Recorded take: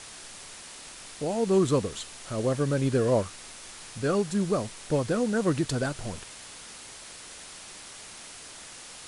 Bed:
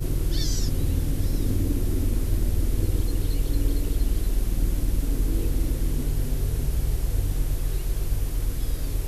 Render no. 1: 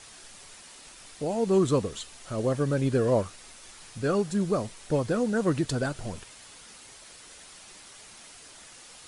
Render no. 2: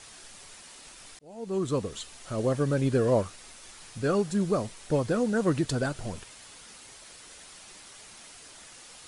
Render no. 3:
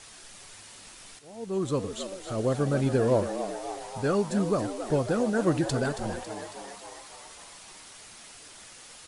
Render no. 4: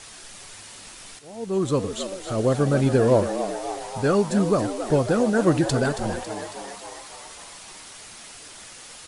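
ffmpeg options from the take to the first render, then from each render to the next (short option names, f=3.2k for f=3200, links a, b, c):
-af "afftdn=nr=6:nf=-45"
-filter_complex "[0:a]asplit=2[a][b];[a]atrim=end=1.19,asetpts=PTS-STARTPTS,afade=t=out:st=1.186:d=0.004:c=hsin[c];[b]atrim=start=1.19,asetpts=PTS-STARTPTS,afade=t=in:d=0.88[d];[c][d]concat=n=2:v=0:a=1"
-filter_complex "[0:a]asplit=9[a][b][c][d][e][f][g][h][i];[b]adelay=275,afreqshift=96,volume=-10dB[j];[c]adelay=550,afreqshift=192,volume=-14.2dB[k];[d]adelay=825,afreqshift=288,volume=-18.3dB[l];[e]adelay=1100,afreqshift=384,volume=-22.5dB[m];[f]adelay=1375,afreqshift=480,volume=-26.6dB[n];[g]adelay=1650,afreqshift=576,volume=-30.8dB[o];[h]adelay=1925,afreqshift=672,volume=-34.9dB[p];[i]adelay=2200,afreqshift=768,volume=-39.1dB[q];[a][j][k][l][m][n][o][p][q]amix=inputs=9:normalize=0"
-af "volume=5.5dB"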